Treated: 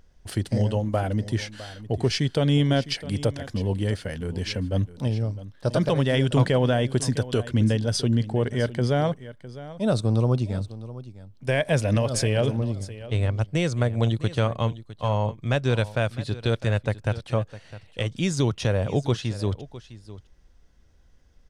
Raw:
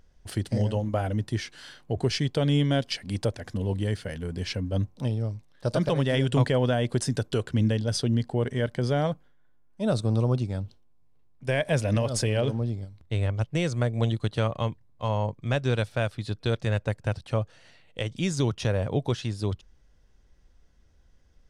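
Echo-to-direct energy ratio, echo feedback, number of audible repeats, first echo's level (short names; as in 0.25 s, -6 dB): -16.0 dB, no steady repeat, 1, -16.0 dB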